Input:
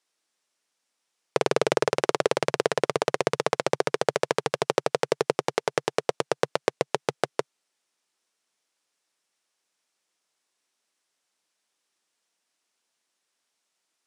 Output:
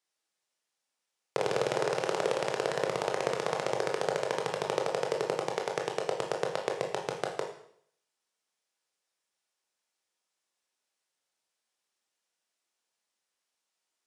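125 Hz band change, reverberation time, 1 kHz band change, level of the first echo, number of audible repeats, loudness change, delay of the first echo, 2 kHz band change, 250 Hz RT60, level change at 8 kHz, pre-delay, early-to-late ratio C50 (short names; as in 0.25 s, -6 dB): -6.0 dB, 0.65 s, -5.0 dB, none, none, -5.5 dB, none, -5.5 dB, 0.70 s, -6.0 dB, 19 ms, 6.5 dB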